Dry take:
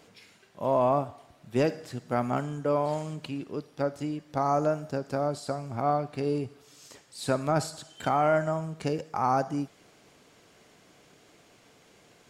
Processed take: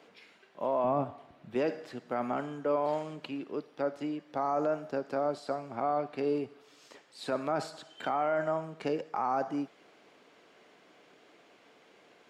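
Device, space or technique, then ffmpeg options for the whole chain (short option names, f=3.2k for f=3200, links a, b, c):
DJ mixer with the lows and highs turned down: -filter_complex "[0:a]acrossover=split=220 4100:gain=0.112 1 0.2[a][b][c];[a][b][c]amix=inputs=3:normalize=0,alimiter=limit=-21dB:level=0:latency=1:release=14,asettb=1/sr,asplit=3[d][e][f];[d]atrim=end=0.844[g];[e]atrim=start=0.84:end=1.55,asetpts=PTS-STARTPTS,afade=t=in:d=0.004:c=qsin,afade=t=out:st=0.706:d=0.004:c=qsin,bass=f=250:g=12,treble=f=4k:g=-3[h];[f]atrim=start=1.546[i];[g][h]acrossfade=d=0.004:c1=hsin:c2=qsin[j];[j][i]acrossfade=d=0.004:c1=qsin:c2=hsin"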